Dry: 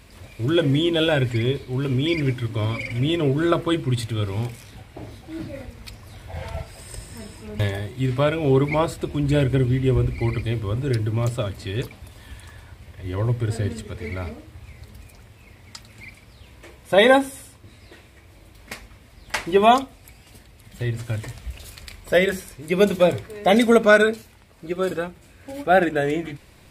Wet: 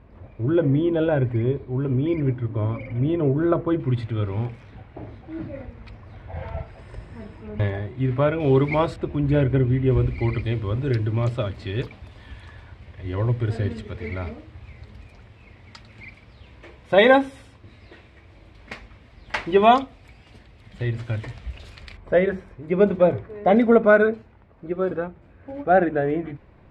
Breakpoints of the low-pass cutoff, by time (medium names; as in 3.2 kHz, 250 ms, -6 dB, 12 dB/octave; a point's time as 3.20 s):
1.1 kHz
from 3.80 s 1.9 kHz
from 8.40 s 4 kHz
from 8.96 s 2 kHz
from 9.91 s 3.5 kHz
from 21.97 s 1.4 kHz